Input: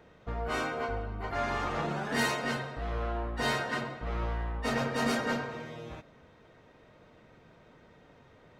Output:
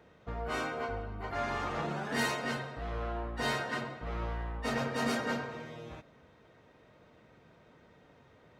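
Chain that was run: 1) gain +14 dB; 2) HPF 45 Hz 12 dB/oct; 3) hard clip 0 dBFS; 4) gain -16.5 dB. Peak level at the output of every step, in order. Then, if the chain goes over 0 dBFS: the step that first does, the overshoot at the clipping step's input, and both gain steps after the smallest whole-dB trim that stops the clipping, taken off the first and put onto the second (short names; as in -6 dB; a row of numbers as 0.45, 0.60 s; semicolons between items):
-1.5, -2.0, -2.0, -18.5 dBFS; no overload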